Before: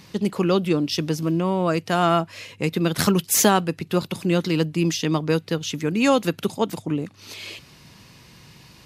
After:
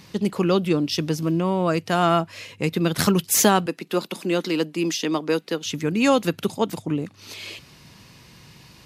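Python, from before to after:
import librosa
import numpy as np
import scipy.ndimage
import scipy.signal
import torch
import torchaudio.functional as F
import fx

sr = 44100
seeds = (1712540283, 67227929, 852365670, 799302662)

y = fx.highpass(x, sr, hz=220.0, slope=24, at=(3.66, 5.66))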